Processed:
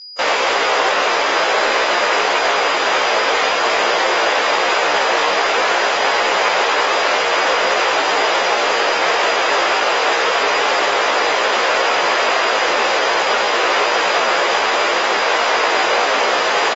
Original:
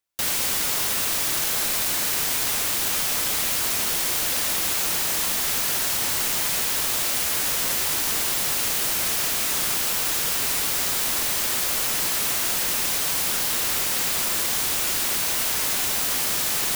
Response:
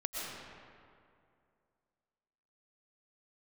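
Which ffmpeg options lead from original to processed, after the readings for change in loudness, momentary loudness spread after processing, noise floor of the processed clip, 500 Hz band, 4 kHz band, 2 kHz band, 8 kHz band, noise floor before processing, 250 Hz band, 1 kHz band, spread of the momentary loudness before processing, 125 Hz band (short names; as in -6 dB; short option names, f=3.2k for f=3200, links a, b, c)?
+6.0 dB, 0 LU, -17 dBFS, +20.0 dB, +7.5 dB, +14.5 dB, -6.0 dB, -24 dBFS, +8.0 dB, +19.0 dB, 0 LU, n/a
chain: -filter_complex "[0:a]acontrast=90,acrossover=split=220 4300:gain=0.0794 1 0.0708[a][b][c];[a][b][c]amix=inputs=3:normalize=0,areverse,acompressor=mode=upward:threshold=-28dB:ratio=2.5,areverse,equalizer=f=125:t=o:w=1:g=-11,equalizer=f=250:t=o:w=1:g=-8,equalizer=f=500:t=o:w=1:g=7,equalizer=f=1k:t=o:w=1:g=4,equalizer=f=4k:t=o:w=1:g=-5,aeval=exprs='val(0)+0.0112*sin(2*PI*4900*n/s)':c=same,asplit=2[d][e];[e]adelay=17,volume=-2dB[f];[d][f]amix=inputs=2:normalize=0,volume=4dB" -ar 44100 -c:a aac -b:a 24k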